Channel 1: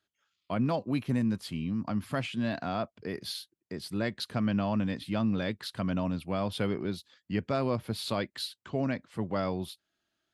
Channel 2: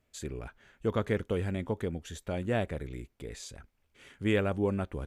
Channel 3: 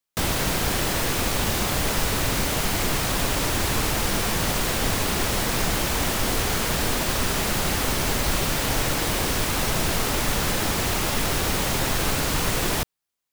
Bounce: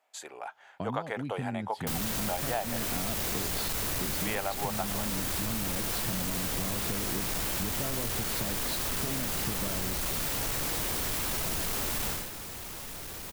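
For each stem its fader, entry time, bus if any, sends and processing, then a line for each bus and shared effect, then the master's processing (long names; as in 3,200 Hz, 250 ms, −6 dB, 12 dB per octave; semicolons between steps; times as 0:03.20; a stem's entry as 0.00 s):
−1.0 dB, 0.30 s, no send, low-shelf EQ 390 Hz +11 dB; downward compressor 6 to 1, threshold −32 dBFS, peak gain reduction 15 dB
+2.0 dB, 0.00 s, no send, high-pass with resonance 790 Hz, resonance Q 4.9
0:12.09 −1 dB → 0:12.31 −10.5 dB, 1.70 s, no send, high-shelf EQ 9,400 Hz +9.5 dB; soft clipping −28.5 dBFS, distortion −6 dB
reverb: not used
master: downward compressor 5 to 1, threshold −28 dBFS, peak gain reduction 9 dB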